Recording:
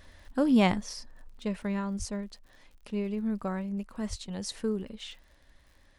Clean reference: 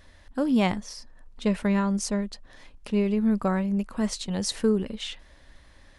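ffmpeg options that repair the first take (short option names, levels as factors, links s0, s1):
-filter_complex "[0:a]adeclick=t=4,asplit=3[s0][s1][s2];[s0]afade=t=out:st=1.98:d=0.02[s3];[s1]highpass=f=140:w=0.5412,highpass=f=140:w=1.3066,afade=t=in:st=1.98:d=0.02,afade=t=out:st=2.1:d=0.02[s4];[s2]afade=t=in:st=2.1:d=0.02[s5];[s3][s4][s5]amix=inputs=3:normalize=0,asplit=3[s6][s7][s8];[s6]afade=t=out:st=4.09:d=0.02[s9];[s7]highpass=f=140:w=0.5412,highpass=f=140:w=1.3066,afade=t=in:st=4.09:d=0.02,afade=t=out:st=4.21:d=0.02[s10];[s8]afade=t=in:st=4.21:d=0.02[s11];[s9][s10][s11]amix=inputs=3:normalize=0,asetnsamples=n=441:p=0,asendcmd='1.37 volume volume 8dB',volume=1"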